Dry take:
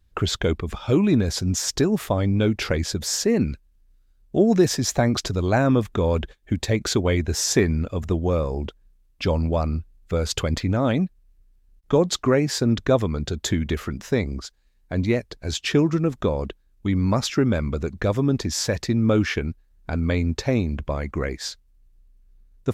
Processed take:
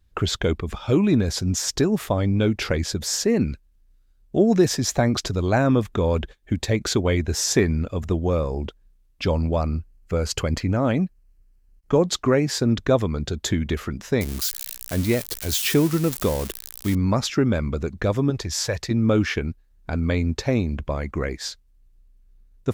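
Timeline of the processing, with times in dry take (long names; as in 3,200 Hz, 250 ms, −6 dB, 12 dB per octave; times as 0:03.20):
0:09.62–0:12.03: notch filter 3,600 Hz, Q 5.3
0:14.21–0:16.95: spike at every zero crossing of −18 dBFS
0:18.30–0:18.91: parametric band 240 Hz −13 dB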